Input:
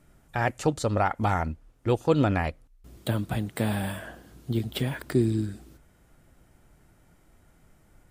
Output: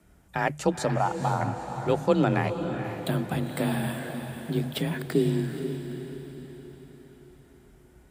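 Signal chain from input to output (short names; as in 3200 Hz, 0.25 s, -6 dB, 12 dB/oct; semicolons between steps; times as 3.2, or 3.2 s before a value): notches 60/120 Hz; frequency shift +30 Hz; 0.96–1.41 fixed phaser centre 810 Hz, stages 4; diffused feedback echo 0.468 s, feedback 49%, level -8 dB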